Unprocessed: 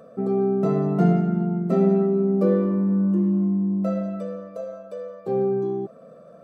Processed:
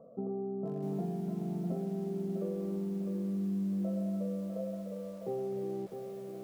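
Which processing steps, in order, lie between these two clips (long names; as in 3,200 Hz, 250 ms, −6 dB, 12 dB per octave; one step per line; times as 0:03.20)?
Butterworth low-pass 1,000 Hz 36 dB per octave
downward compressor 16 to 1, threshold −25 dBFS, peak gain reduction 12.5 dB
feedback echo at a low word length 653 ms, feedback 35%, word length 8 bits, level −6 dB
level −8 dB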